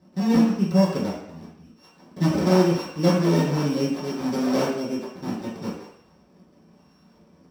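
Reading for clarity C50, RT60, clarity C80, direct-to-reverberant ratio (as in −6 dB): 3.5 dB, 0.70 s, 6.5 dB, −11.0 dB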